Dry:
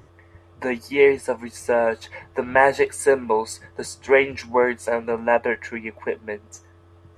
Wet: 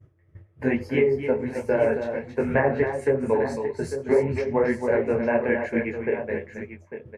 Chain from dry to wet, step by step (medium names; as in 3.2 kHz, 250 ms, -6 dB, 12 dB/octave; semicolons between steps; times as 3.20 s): graphic EQ 125/1000/4000/8000 Hz +11/-10/-11/-11 dB; low-pass that closes with the level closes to 910 Hz, closed at -13 dBFS; compression, threshold -19 dBFS, peak gain reduction 7.5 dB; expander -35 dBFS; de-hum 99.59 Hz, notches 11; on a send: multi-tap echo 80/272/849 ms -19.5/-7.5/-10.5 dB; on the sum: detune thickener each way 42 cents; trim +6.5 dB